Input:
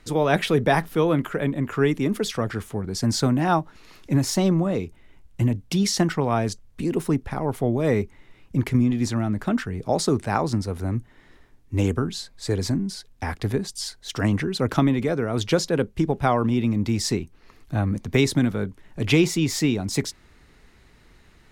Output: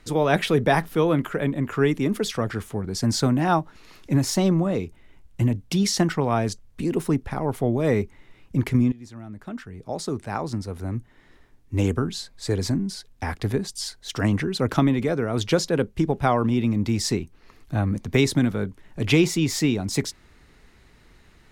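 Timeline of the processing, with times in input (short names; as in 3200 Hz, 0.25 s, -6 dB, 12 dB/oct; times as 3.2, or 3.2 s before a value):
8.92–11.9 fade in, from -21 dB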